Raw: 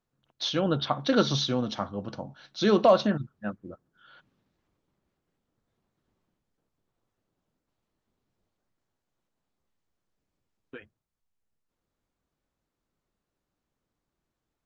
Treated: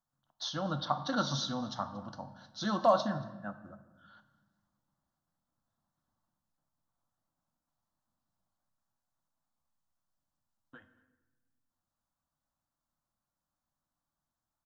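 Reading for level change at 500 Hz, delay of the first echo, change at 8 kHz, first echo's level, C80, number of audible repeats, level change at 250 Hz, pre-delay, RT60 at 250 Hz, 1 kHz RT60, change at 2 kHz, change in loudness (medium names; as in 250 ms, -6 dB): -9.0 dB, 231 ms, no reading, -24.0 dB, 13.5 dB, 1, -9.0 dB, 3 ms, 1.9 s, 1.1 s, -6.0 dB, -7.0 dB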